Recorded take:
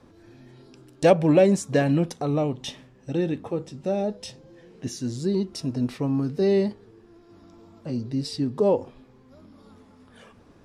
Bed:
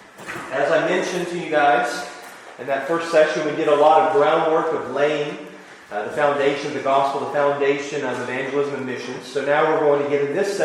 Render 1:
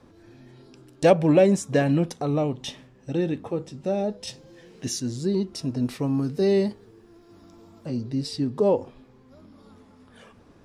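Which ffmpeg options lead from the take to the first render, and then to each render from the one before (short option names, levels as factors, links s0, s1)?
-filter_complex "[0:a]asettb=1/sr,asplit=3[s0][s1][s2];[s0]atrim=end=1.324[s3];[s1]atrim=start=1.32:end=1.88,asetpts=PTS-STARTPTS,afade=t=in:d=0.004:c=qsin,afade=t=out:st=0.556:d=0.004:c=qsin,bandreject=f=4400:w=12[s4];[s2]atrim=start=1.876[s5];[s3][s4]acrossfade=d=0.004:c1=hsin:c2=qsin[s6];[s6][s5]acrossfade=d=0.004:c1=qsin:c2=hsin,asettb=1/sr,asplit=3[s7][s8][s9];[s7]atrim=end=4.274[s10];[s8]atrim=start=4.27:end=5,asetpts=PTS-STARTPTS,afade=t=in:d=0.004:c=qsin,afade=t=out:st=0.726:d=0.004:c=qsin,highshelf=f=2100:g=8.5[s11];[s9]atrim=start=4.996[s12];[s10][s11]acrossfade=d=0.004:c1=hsin:c2=qsin[s13];[s13][s12]acrossfade=d=0.004:c1=qsin:c2=hsin,asettb=1/sr,asplit=3[s14][s15][s16];[s14]atrim=end=5.854[s17];[s15]atrim=start=5.85:end=7.89,asetpts=PTS-STARTPTS,afade=t=in:d=0.004:c=qsin,afade=t=out:st=2.036:d=0.004:c=qsin,highshelf=f=7300:g=9.5[s18];[s16]atrim=start=7.886[s19];[s17][s18]acrossfade=d=0.004:c1=hsin:c2=qsin[s20];[s20][s19]acrossfade=d=0.004:c1=qsin:c2=hsin"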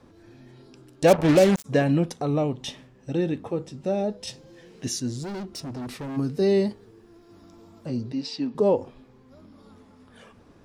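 -filter_complex "[0:a]asplit=3[s0][s1][s2];[s0]afade=t=out:st=1.07:d=0.02[s3];[s1]acrusher=bits=3:mix=0:aa=0.5,afade=t=in:st=1.07:d=0.02,afade=t=out:st=1.64:d=0.02[s4];[s2]afade=t=in:st=1.64:d=0.02[s5];[s3][s4][s5]amix=inputs=3:normalize=0,asplit=3[s6][s7][s8];[s6]afade=t=out:st=5.22:d=0.02[s9];[s7]asoftclip=type=hard:threshold=0.0266,afade=t=in:st=5.22:d=0.02,afade=t=out:st=6.16:d=0.02[s10];[s8]afade=t=in:st=6.16:d=0.02[s11];[s9][s10][s11]amix=inputs=3:normalize=0,asettb=1/sr,asplit=3[s12][s13][s14];[s12]atrim=end=8.124[s15];[s13]atrim=start=8.12:end=8.55,asetpts=PTS-STARTPTS,afade=t=in:d=0.004:c=qsin,afade=t=out:st=0.426:d=0.004:c=qsin,highpass=f=200:w=0.5412,highpass=f=200:w=1.3066,equalizer=f=380:t=q:w=4:g=-8,equalizer=f=900:t=q:w=4:g=7,equalizer=f=2600:t=q:w=4:g=7,lowpass=f=6200:w=0.5412,lowpass=f=6200:w=1.3066[s16];[s14]atrim=start=8.546[s17];[s15][s16]acrossfade=d=0.004:c1=hsin:c2=qsin[s18];[s18][s17]acrossfade=d=0.004:c1=qsin:c2=hsin"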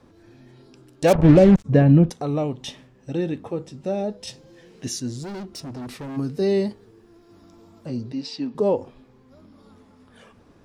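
-filter_complex "[0:a]asettb=1/sr,asplit=3[s0][s1][s2];[s0]atrim=end=1.154[s3];[s1]atrim=start=1.15:end=2.1,asetpts=PTS-STARTPTS,afade=t=in:d=0.004:c=qsin,afade=t=out:st=0.946:d=0.004:c=qsin,aemphasis=mode=reproduction:type=riaa[s4];[s2]atrim=start=2.096[s5];[s3][s4]acrossfade=d=0.004:c1=hsin:c2=qsin[s6];[s6][s5]acrossfade=d=0.004:c1=qsin:c2=hsin"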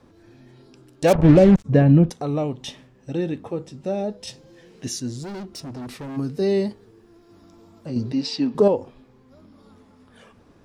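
-filter_complex "[0:a]asettb=1/sr,asplit=3[s0][s1][s2];[s0]atrim=end=7.964[s3];[s1]atrim=start=7.96:end=8.68,asetpts=PTS-STARTPTS,afade=t=in:d=0.004:c=qsin,afade=t=out:st=0.716:d=0.004:c=qsin,acontrast=49[s4];[s2]atrim=start=8.676[s5];[s3][s4]acrossfade=d=0.004:c1=hsin:c2=qsin[s6];[s6][s5]acrossfade=d=0.004:c1=qsin:c2=hsin"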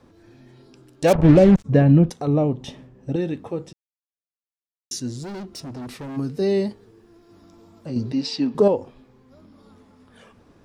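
-filter_complex "[0:a]asettb=1/sr,asplit=3[s0][s1][s2];[s0]atrim=end=2.274[s3];[s1]atrim=start=2.27:end=3.16,asetpts=PTS-STARTPTS,afade=t=in:d=0.004:c=qsin,afade=t=out:st=0.886:d=0.004:c=qsin,tiltshelf=f=1100:g=6[s4];[s2]atrim=start=3.156[s5];[s3][s4]acrossfade=d=0.004:c1=hsin:c2=qsin[s6];[s6][s5]acrossfade=d=0.004:c1=qsin:c2=hsin,asplit=3[s7][s8][s9];[s7]atrim=end=3.73,asetpts=PTS-STARTPTS,afade=t=out:st=3.726:d=0.004:c=hsin[s10];[s8]atrim=start=3.73:end=4.91,asetpts=PTS-STARTPTS,volume=0[s11];[s9]atrim=start=4.91,asetpts=PTS-STARTPTS,afade=t=in:d=0.004:c=hsin[s12];[s10][s11][s12]concat=n=3:v=0:a=1"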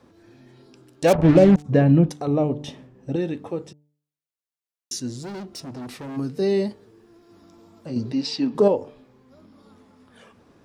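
-af "lowshelf=f=67:g=-11,bandreject=f=147.9:t=h:w=4,bandreject=f=295.8:t=h:w=4,bandreject=f=443.7:t=h:w=4,bandreject=f=591.6:t=h:w=4,bandreject=f=739.5:t=h:w=4,bandreject=f=887.4:t=h:w=4"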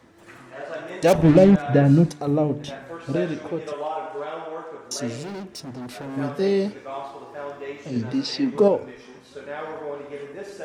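-filter_complex "[1:a]volume=0.168[s0];[0:a][s0]amix=inputs=2:normalize=0"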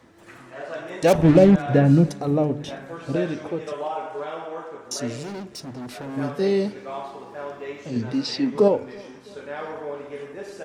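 -af "aecho=1:1:329|658|987|1316:0.0631|0.0366|0.0212|0.0123"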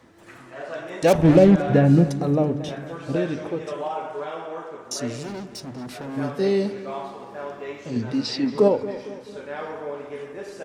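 -filter_complex "[0:a]asplit=2[s0][s1];[s1]adelay=229,lowpass=f=3700:p=1,volume=0.188,asplit=2[s2][s3];[s3]adelay=229,lowpass=f=3700:p=1,volume=0.52,asplit=2[s4][s5];[s5]adelay=229,lowpass=f=3700:p=1,volume=0.52,asplit=2[s6][s7];[s7]adelay=229,lowpass=f=3700:p=1,volume=0.52,asplit=2[s8][s9];[s9]adelay=229,lowpass=f=3700:p=1,volume=0.52[s10];[s0][s2][s4][s6][s8][s10]amix=inputs=6:normalize=0"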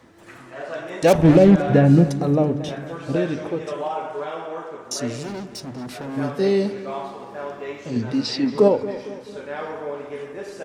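-af "volume=1.26,alimiter=limit=0.708:level=0:latency=1"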